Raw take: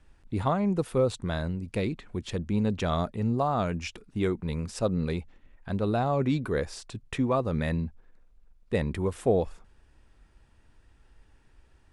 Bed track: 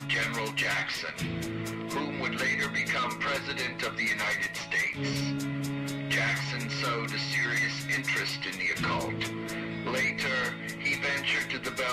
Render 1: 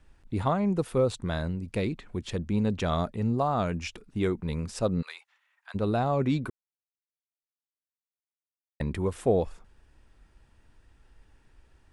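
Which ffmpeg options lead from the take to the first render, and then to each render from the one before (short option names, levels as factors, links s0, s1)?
-filter_complex "[0:a]asplit=3[s0][s1][s2];[s0]afade=t=out:st=5.01:d=0.02[s3];[s1]highpass=f=990:w=0.5412,highpass=f=990:w=1.3066,afade=t=in:st=5.01:d=0.02,afade=t=out:st=5.74:d=0.02[s4];[s2]afade=t=in:st=5.74:d=0.02[s5];[s3][s4][s5]amix=inputs=3:normalize=0,asplit=3[s6][s7][s8];[s6]atrim=end=6.5,asetpts=PTS-STARTPTS,afade=t=out:st=6.496:d=0.004:c=hsin[s9];[s7]atrim=start=6.5:end=8.8,asetpts=PTS-STARTPTS,volume=0[s10];[s8]atrim=start=8.8,asetpts=PTS-STARTPTS,afade=t=in:d=0.004:c=hsin[s11];[s9][s10][s11]concat=n=3:v=0:a=1"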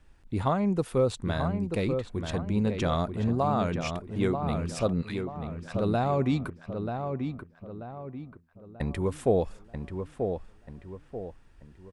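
-filter_complex "[0:a]asplit=2[s0][s1];[s1]adelay=936,lowpass=f=2300:p=1,volume=0.501,asplit=2[s2][s3];[s3]adelay=936,lowpass=f=2300:p=1,volume=0.41,asplit=2[s4][s5];[s5]adelay=936,lowpass=f=2300:p=1,volume=0.41,asplit=2[s6][s7];[s7]adelay=936,lowpass=f=2300:p=1,volume=0.41,asplit=2[s8][s9];[s9]adelay=936,lowpass=f=2300:p=1,volume=0.41[s10];[s0][s2][s4][s6][s8][s10]amix=inputs=6:normalize=0"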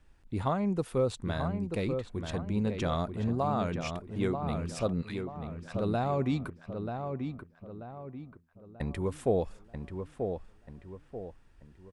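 -af "volume=0.668"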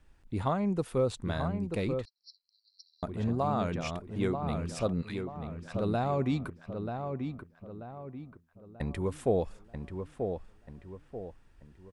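-filter_complex "[0:a]asettb=1/sr,asplit=3[s0][s1][s2];[s0]atrim=end=2.054[s3];[s1]atrim=start=2.05:end=3.03,asetpts=PTS-STARTPTS,afade=t=in:d=0.004:c=qsin,afade=t=out:st=0.976:d=0.004:c=qsin,asuperpass=centerf=4800:order=20:qfactor=3[s4];[s2]atrim=start=3.026[s5];[s3][s4]acrossfade=d=0.004:c1=hsin:c2=qsin[s6];[s6][s5]acrossfade=d=0.004:c1=qsin:c2=hsin"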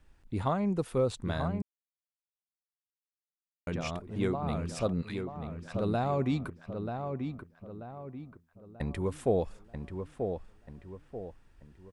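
-filter_complex "[0:a]asplit=3[s0][s1][s2];[s0]atrim=end=1.62,asetpts=PTS-STARTPTS,afade=t=out:st=1.616:d=0.004:c=hsin[s3];[s1]atrim=start=1.62:end=3.67,asetpts=PTS-STARTPTS,volume=0[s4];[s2]atrim=start=3.67,asetpts=PTS-STARTPTS,afade=t=in:d=0.004:c=hsin[s5];[s3][s4][s5]concat=n=3:v=0:a=1"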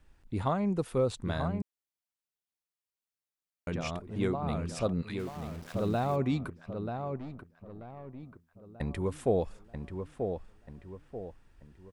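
-filter_complex "[0:a]asplit=3[s0][s1][s2];[s0]afade=t=out:st=5.18:d=0.02[s3];[s1]aeval=exprs='val(0)*gte(abs(val(0)),0.00562)':c=same,afade=t=in:st=5.18:d=0.02,afade=t=out:st=6.15:d=0.02[s4];[s2]afade=t=in:st=6.15:d=0.02[s5];[s3][s4][s5]amix=inputs=3:normalize=0,asettb=1/sr,asplit=3[s6][s7][s8];[s6]atrim=end=7.164[s9];[s7]atrim=start=7.16:end=8.23,asetpts=PTS-STARTPTS,afade=t=in:d=0.004:c=qsin,afade=t=out:st=1.066:d=0.004:c=qsin,aeval=exprs='(tanh(79.4*val(0)+0.5)-tanh(0.5))/79.4':c=same[s10];[s8]atrim=start=8.226[s11];[s9][s10]acrossfade=d=0.004:c1=hsin:c2=qsin[s12];[s12][s11]acrossfade=d=0.004:c1=qsin:c2=hsin"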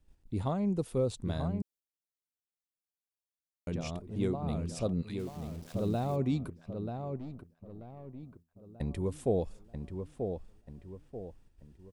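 -af "agate=range=0.501:threshold=0.00141:ratio=16:detection=peak,equalizer=f=1500:w=0.68:g=-10"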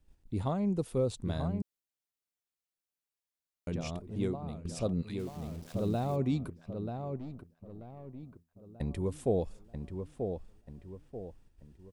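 -filter_complex "[0:a]asplit=2[s0][s1];[s0]atrim=end=4.65,asetpts=PTS-STARTPTS,afade=t=out:st=4.01:d=0.64:c=qsin:silence=0.16788[s2];[s1]atrim=start=4.65,asetpts=PTS-STARTPTS,afade=t=in:d=0.004:c=hsin:silence=0.16788[s3];[s2][s3]concat=n=2:v=0:a=1"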